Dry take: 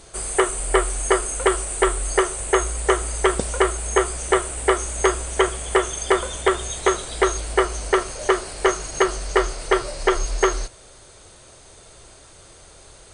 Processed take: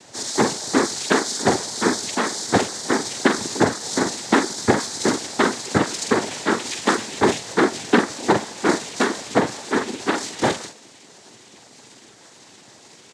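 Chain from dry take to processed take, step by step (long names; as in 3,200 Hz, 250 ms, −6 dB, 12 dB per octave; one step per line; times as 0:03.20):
pitch shifter swept by a sawtooth −10 semitones, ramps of 526 ms
double-tracking delay 45 ms −6 dB
cochlear-implant simulation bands 6
level +1.5 dB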